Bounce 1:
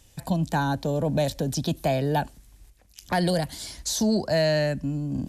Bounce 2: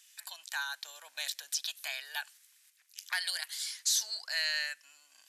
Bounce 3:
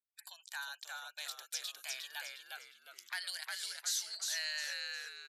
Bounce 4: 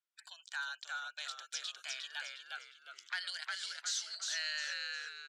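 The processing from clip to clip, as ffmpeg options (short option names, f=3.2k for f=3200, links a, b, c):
-af "highpass=f=1.5k:w=0.5412,highpass=f=1.5k:w=1.3066"
-filter_complex "[0:a]agate=range=-6dB:threshold=-53dB:ratio=16:detection=peak,afftfilt=real='re*gte(hypot(re,im),0.00158)':imag='im*gte(hypot(re,im),0.00158)':win_size=1024:overlap=0.75,asplit=2[a][b];[b]asplit=5[c][d][e][f][g];[c]adelay=357,afreqshift=-100,volume=-3dB[h];[d]adelay=714,afreqshift=-200,volume=-11.6dB[i];[e]adelay=1071,afreqshift=-300,volume=-20.3dB[j];[f]adelay=1428,afreqshift=-400,volume=-28.9dB[k];[g]adelay=1785,afreqshift=-500,volume=-37.5dB[l];[h][i][j][k][l]amix=inputs=5:normalize=0[m];[a][m]amix=inputs=2:normalize=0,volume=-7dB"
-af "aeval=exprs='0.0631*(cos(1*acos(clip(val(0)/0.0631,-1,1)))-cos(1*PI/2))+0.000891*(cos(4*acos(clip(val(0)/0.0631,-1,1)))-cos(4*PI/2))':c=same,acrusher=bits=7:mode=log:mix=0:aa=0.000001,highpass=380,equalizer=f=870:t=q:w=4:g=-3,equalizer=f=1.4k:t=q:w=4:g=8,equalizer=f=3.1k:t=q:w=4:g=5,lowpass=f=7.6k:w=0.5412,lowpass=f=7.6k:w=1.3066,volume=-1dB"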